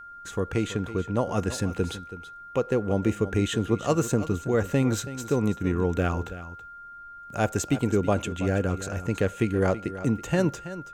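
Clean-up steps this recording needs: band-stop 1.4 kHz, Q 30; expander -36 dBFS, range -21 dB; inverse comb 327 ms -14 dB

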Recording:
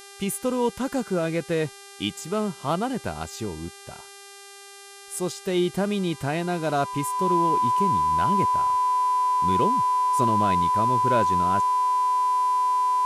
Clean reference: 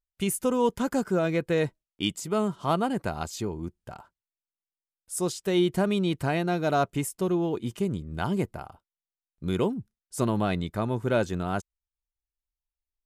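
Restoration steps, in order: de-hum 398.1 Hz, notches 29; band-stop 1 kHz, Q 30

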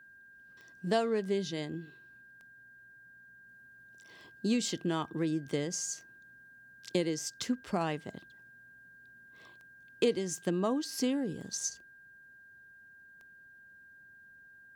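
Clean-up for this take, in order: de-click; band-stop 1.6 kHz, Q 30

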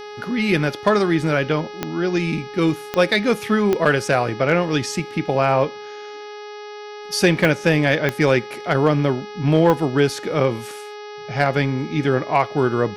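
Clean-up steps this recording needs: clip repair -6 dBFS; de-click; de-hum 417.2 Hz, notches 14

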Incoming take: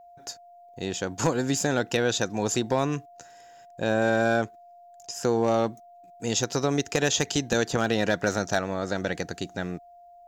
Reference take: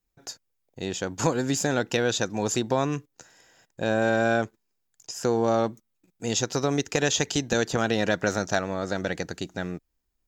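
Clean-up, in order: clip repair -13 dBFS; band-stop 700 Hz, Q 30

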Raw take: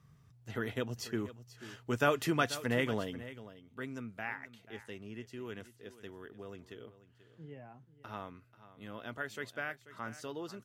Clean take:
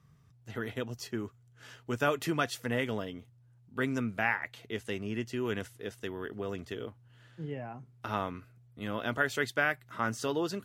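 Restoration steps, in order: inverse comb 487 ms -15.5 dB; trim 0 dB, from 3.47 s +10.5 dB

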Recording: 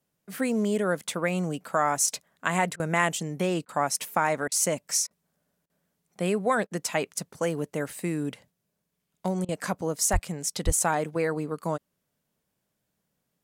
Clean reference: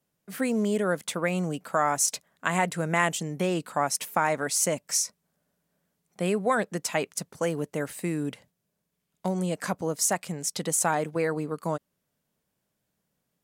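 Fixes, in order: 10.12–10.24 s: high-pass 140 Hz 24 dB/octave; 10.65–10.77 s: high-pass 140 Hz 24 dB/octave; interpolate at 2.76/3.65/4.48/5.07/5.66/6.67/9.45 s, 36 ms

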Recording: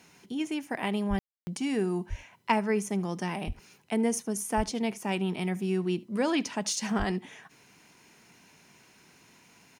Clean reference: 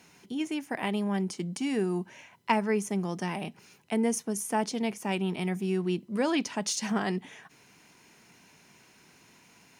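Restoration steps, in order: de-plosive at 1.09/2.09/3.46/4.56/6.98 s; room tone fill 1.19–1.47 s; inverse comb 75 ms -22.5 dB

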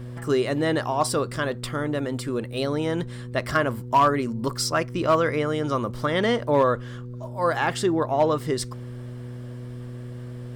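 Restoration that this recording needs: clip repair -11.5 dBFS; de-hum 122.6 Hz, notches 4

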